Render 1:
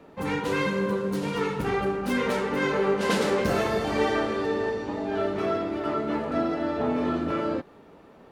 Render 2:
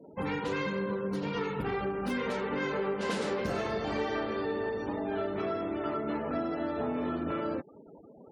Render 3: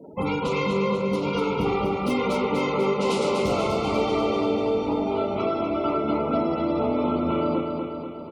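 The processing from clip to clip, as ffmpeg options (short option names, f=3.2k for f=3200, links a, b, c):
-af "afftfilt=real='re*gte(hypot(re,im),0.00708)':imag='im*gte(hypot(re,im),0.00708)':win_size=1024:overlap=0.75,acompressor=threshold=-31dB:ratio=3"
-filter_complex "[0:a]asuperstop=centerf=1700:order=12:qfactor=2.8,asplit=2[a][b];[b]aecho=0:1:244|488|732|976|1220|1464|1708|1952:0.562|0.332|0.196|0.115|0.0681|0.0402|0.0237|0.014[c];[a][c]amix=inputs=2:normalize=0,volume=7.5dB"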